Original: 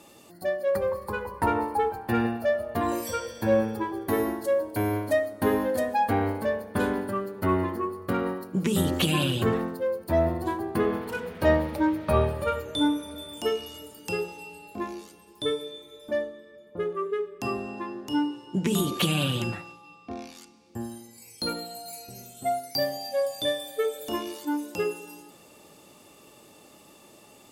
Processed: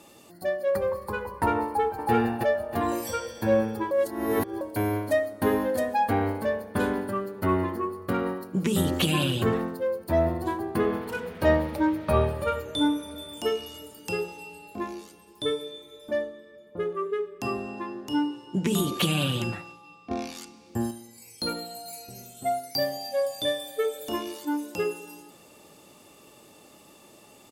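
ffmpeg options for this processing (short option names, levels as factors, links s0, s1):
-filter_complex "[0:a]asplit=2[s0][s1];[s1]afade=t=in:st=1.66:d=0.01,afade=t=out:st=2.11:d=0.01,aecho=0:1:320|640|960|1280|1600:0.944061|0.330421|0.115647|0.0404766|0.0141668[s2];[s0][s2]amix=inputs=2:normalize=0,asplit=5[s3][s4][s5][s6][s7];[s3]atrim=end=3.912[s8];[s4]atrim=start=3.908:end=4.612,asetpts=PTS-STARTPTS,areverse[s9];[s5]atrim=start=4.608:end=20.112[s10];[s6]atrim=start=20.108:end=20.912,asetpts=PTS-STARTPTS,volume=2.11[s11];[s7]atrim=start=20.908[s12];[s8][s9]acrossfade=d=0.004:c1=hsin:c2=hsin[s13];[s13][s10]acrossfade=d=0.004:c1=hsin:c2=hsin[s14];[s14][s11]acrossfade=d=0.004:c1=hsin:c2=hsin[s15];[s15][s12]acrossfade=d=0.004:c1=hsin:c2=hsin"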